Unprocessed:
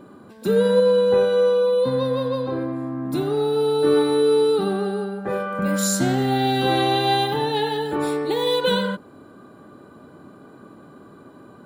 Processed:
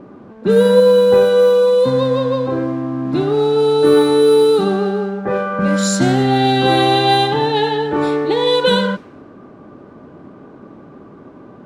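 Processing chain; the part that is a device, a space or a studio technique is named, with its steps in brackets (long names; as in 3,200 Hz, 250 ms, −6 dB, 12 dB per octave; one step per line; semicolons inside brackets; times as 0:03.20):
cassette deck with a dynamic noise filter (white noise bed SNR 28 dB; low-pass that shuts in the quiet parts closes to 980 Hz, open at −14 dBFS)
level +6.5 dB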